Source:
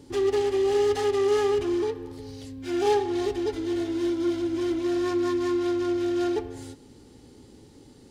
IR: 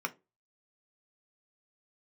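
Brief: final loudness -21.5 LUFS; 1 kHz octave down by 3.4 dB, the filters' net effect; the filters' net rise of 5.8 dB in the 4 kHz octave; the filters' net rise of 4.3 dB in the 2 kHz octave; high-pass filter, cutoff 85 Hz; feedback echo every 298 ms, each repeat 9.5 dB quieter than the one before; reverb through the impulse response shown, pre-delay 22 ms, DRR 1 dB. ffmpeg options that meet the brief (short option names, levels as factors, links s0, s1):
-filter_complex "[0:a]highpass=85,equalizer=f=1000:t=o:g=-6,equalizer=f=2000:t=o:g=5.5,equalizer=f=4000:t=o:g=6,aecho=1:1:298|596|894|1192:0.335|0.111|0.0365|0.012,asplit=2[s0][s1];[1:a]atrim=start_sample=2205,adelay=22[s2];[s1][s2]afir=irnorm=-1:irlink=0,volume=0.501[s3];[s0][s3]amix=inputs=2:normalize=0,volume=1.5"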